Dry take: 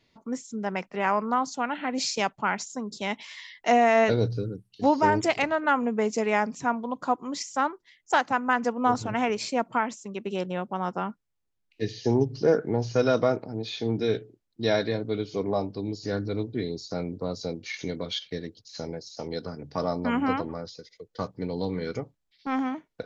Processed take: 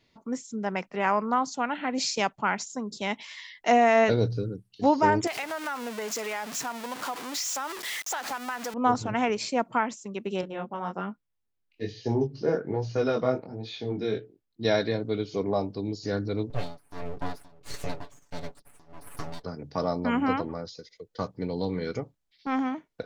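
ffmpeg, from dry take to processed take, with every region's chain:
ffmpeg -i in.wav -filter_complex "[0:a]asettb=1/sr,asplit=3[link_01][link_02][link_03];[link_01]atrim=end=5.274[link_04];[link_02]atrim=start=5.27:end=8.74,asetpts=PTS-STARTPTS,afade=type=in:duration=0.004:curve=qsin,afade=type=out:start_time=3.466:duration=0.004:curve=qsin,aeval=exprs='val(0)+0.5*0.0447*sgn(val(0))':channel_layout=same,highpass=frequency=990:poles=1,acompressor=threshold=-28dB:ratio=5:attack=3.2:release=140:knee=1:detection=peak[link_05];[link_03]atrim=start=8.736[link_06];[link_04][link_05]acrossfade=duration=0.004:curve1=hsin:curve2=qsin[link_07];[link_07][link_06]acrossfade=duration=0.004:curve1=qsin:curve2=hsin,asettb=1/sr,asplit=3[link_08][link_09][link_10];[link_08]atrim=end=10.414[link_11];[link_09]atrim=start=10.41:end=14.65,asetpts=PTS-STARTPTS,afade=type=in:duration=0.004:curve=qsin,afade=type=out:start_time=4.236:duration=0.004:curve=qsin,equalizer=frequency=6900:width_type=o:width=1.1:gain=-5,flanger=delay=18:depth=5.6:speed=1.2[link_12];[link_10]atrim=start=14.646[link_13];[link_11][link_12]acrossfade=duration=0.004:curve1=hsin:curve2=qsin[link_14];[link_14][link_13]acrossfade=duration=0.004:curve1=qsin:curve2=hsin,asettb=1/sr,asplit=3[link_15][link_16][link_17];[link_15]atrim=end=16.504[link_18];[link_16]atrim=start=16.5:end=19.44,asetpts=PTS-STARTPTS,afade=type=in:duration=0.004:curve=qsin,afade=type=out:start_time=2.936:duration=0.004:curve=qsin,aeval=exprs='abs(val(0))':channel_layout=same,tremolo=f=1.5:d=0.95,aecho=1:1:7:0.77,atrim=end_sample=129654[link_19];[link_17]atrim=start=19.436[link_20];[link_18][link_19]acrossfade=duration=0.004:curve1=hsin:curve2=qsin[link_21];[link_21][link_20]acrossfade=duration=0.004:curve1=qsin:curve2=hsin" out.wav

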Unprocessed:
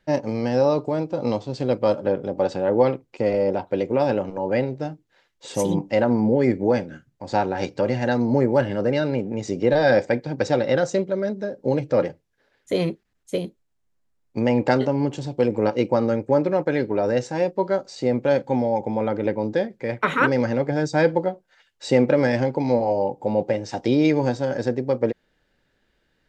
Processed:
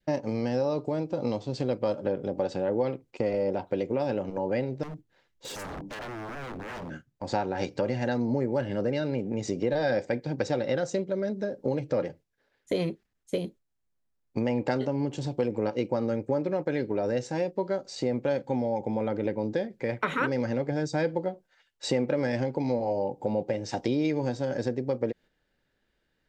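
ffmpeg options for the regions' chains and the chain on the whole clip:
ffmpeg -i in.wav -filter_complex "[0:a]asettb=1/sr,asplit=3[link_01][link_02][link_03];[link_01]atrim=end=4.834[link_04];[link_02]atrim=start=4.83:end=6.9,asetpts=PTS-STARTPTS,afade=type=in:duration=0.004:curve=qsin,afade=type=out:start_time=2.066:duration=0.004:curve=qsin,lowshelf=frequency=360:gain=10,acompressor=threshold=-30dB:ratio=3:attack=3.2:release=140:knee=1:detection=peak,aeval=exprs='0.0224*(abs(mod(val(0)/0.0224+3,4)-2)-1)':channel_layout=same[link_05];[link_03]atrim=start=6.896[link_06];[link_04][link_05]acrossfade=duration=0.004:curve1=hsin:curve2=qsin[link_07];[link_07][link_06]acrossfade=duration=0.004:curve1=qsin:curve2=hsin,agate=range=-7dB:threshold=-43dB:ratio=16:detection=peak,adynamicequalizer=threshold=0.0158:dfrequency=1100:dqfactor=0.92:tfrequency=1100:tqfactor=0.92:attack=5:release=100:ratio=0.375:range=2:mode=cutabove:tftype=bell,acompressor=threshold=-27dB:ratio=2.5" out.wav

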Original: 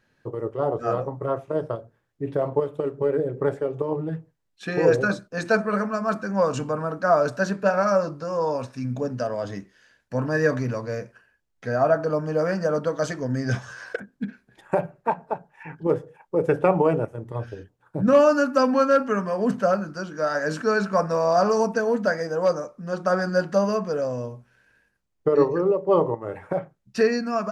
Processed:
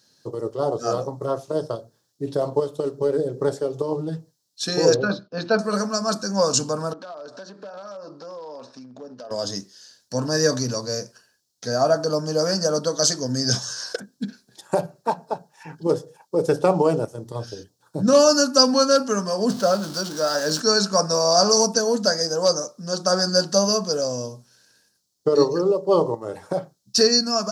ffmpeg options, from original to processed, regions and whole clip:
ffmpeg -i in.wav -filter_complex "[0:a]asettb=1/sr,asplit=3[link_01][link_02][link_03];[link_01]atrim=end=4.944[link_04];[link_02]atrim=start=4.94:end=5.59,asetpts=PTS-STARTPTS,afade=type=in:duration=0.004:curve=qsin,afade=type=out:start_time=0.646:duration=0.004:curve=qsin,lowpass=frequency=3100:width=0.5412,lowpass=frequency=3100:width=1.3066,bandreject=frequency=1800:width=15[link_05];[link_03]atrim=start=5.586[link_06];[link_04][link_05]acrossfade=duration=0.004:curve1=hsin:curve2=qsin[link_07];[link_07][link_06]acrossfade=duration=0.004:curve1=qsin:curve2=hsin,asettb=1/sr,asplit=3[link_08][link_09][link_10];[link_08]atrim=end=6.934[link_11];[link_09]atrim=start=6.93:end=9.31,asetpts=PTS-STARTPTS,afade=type=in:duration=0.004:curve=qsin,afade=type=out:start_time=2.376:duration=0.004:curve=qsin,acompressor=threshold=-33dB:ratio=16:attack=3.2:release=140:knee=1:detection=peak,aeval=exprs='0.0282*(abs(mod(val(0)/0.0282+3,4)-2)-1)':channel_layout=same,highpass=280,lowpass=2200[link_12];[link_10]atrim=start=9.306[link_13];[link_11][link_12]acrossfade=duration=0.004:curve1=hsin:curve2=qsin[link_14];[link_14][link_13]acrossfade=duration=0.004:curve1=qsin:curve2=hsin,asettb=1/sr,asplit=3[link_15][link_16][link_17];[link_15]atrim=end=19.494[link_18];[link_16]atrim=start=19.49:end=20.6,asetpts=PTS-STARTPTS,afade=type=in:duration=0.004:curve=qsin,afade=type=out:start_time=1.106:duration=0.004:curve=qsin,aeval=exprs='val(0)+0.5*0.02*sgn(val(0))':channel_layout=same,bass=frequency=250:gain=-2,treble=frequency=4000:gain=-9[link_19];[link_17]atrim=start=20.596[link_20];[link_18][link_19]acrossfade=duration=0.004:curve1=hsin:curve2=qsin[link_21];[link_21][link_20]acrossfade=duration=0.004:curve1=qsin:curve2=hsin,highpass=120,highshelf=frequency=3300:width_type=q:width=3:gain=13.5,bandreject=frequency=4800:width=25,volume=1.5dB" out.wav

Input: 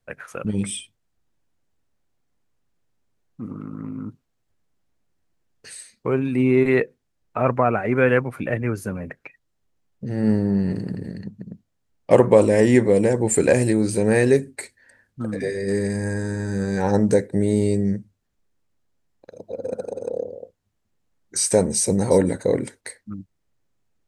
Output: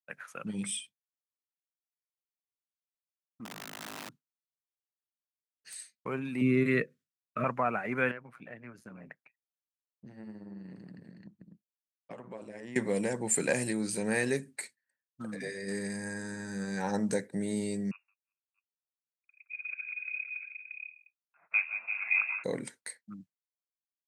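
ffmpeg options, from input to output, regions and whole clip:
ffmpeg -i in.wav -filter_complex "[0:a]asettb=1/sr,asplit=3[link_01][link_02][link_03];[link_01]atrim=end=3.454[link_04];[link_02]atrim=start=3.45:end=5.74,asetpts=PTS-STARTPTS,afade=type=in:duration=0.004:curve=qsin,afade=type=out:start_time=2.286:duration=0.004:curve=qsin,highpass=62,aeval=exprs='(mod(26.6*val(0)+1,2)-1)/26.6':channel_layout=same[link_05];[link_03]atrim=start=5.736[link_06];[link_04][link_05]acrossfade=duration=0.004:curve1=hsin:curve2=qsin[link_07];[link_07][link_06]acrossfade=duration=0.004:curve1=qsin:curve2=hsin,asettb=1/sr,asplit=3[link_08][link_09][link_10];[link_08]atrim=end=6.414[link_11];[link_09]atrim=start=6.41:end=7.44,asetpts=PTS-STARTPTS,afade=type=in:duration=0.004:curve=qsin,afade=type=out:start_time=1.026:duration=0.004:curve=qsin,asuperstop=centerf=830:order=8:qfactor=1.9,equalizer=frequency=120:width=0.42:gain=8.5[link_12];[link_10]atrim=start=7.436[link_13];[link_11][link_12]acrossfade=duration=0.004:curve1=hsin:curve2=qsin[link_14];[link_14][link_13]acrossfade=duration=0.004:curve1=qsin:curve2=hsin,asettb=1/sr,asplit=3[link_15][link_16][link_17];[link_15]atrim=end=8.114[link_18];[link_16]atrim=start=8.11:end=12.76,asetpts=PTS-STARTPTS,afade=type=in:duration=0.004:curve=qsin,afade=type=out:start_time=4.646:duration=0.004:curve=qsin,aemphasis=mode=reproduction:type=50fm,acompressor=threshold=-29dB:ratio=3:attack=3.2:release=140:knee=1:detection=peak,tremolo=f=120:d=0.75[link_19];[link_17]atrim=start=12.756[link_20];[link_18][link_19]acrossfade=duration=0.004:curve1=hsin:curve2=qsin[link_21];[link_21][link_20]acrossfade=duration=0.004:curve1=qsin:curve2=hsin,asettb=1/sr,asplit=3[link_22][link_23][link_24];[link_22]atrim=end=17.914[link_25];[link_23]atrim=start=17.91:end=22.44,asetpts=PTS-STARTPTS,afade=type=in:duration=0.004:curve=qsin,afade=type=out:start_time=4.526:duration=0.004:curve=qsin,highpass=frequency=570:width=0.5412,highpass=frequency=570:width=1.3066,aecho=1:1:169|177|335|362|423|629:0.211|0.282|0.133|0.316|0.126|0.562,atrim=end_sample=199773,lowpass=frequency=2600:width_type=q:width=0.5098,lowpass=frequency=2600:width_type=q:width=0.6013,lowpass=frequency=2600:width_type=q:width=0.9,lowpass=frequency=2600:width_type=q:width=2.563,afreqshift=-3000[link_26];[link_24]atrim=start=22.436[link_27];[link_25][link_26]acrossfade=duration=0.004:curve1=hsin:curve2=qsin[link_28];[link_28][link_27]acrossfade=duration=0.004:curve1=qsin:curve2=hsin,highpass=frequency=160:width=0.5412,highpass=frequency=160:width=1.3066,agate=range=-33dB:threshold=-38dB:ratio=3:detection=peak,equalizer=frequency=390:width_type=o:width=1.9:gain=-10.5,volume=-5dB" out.wav

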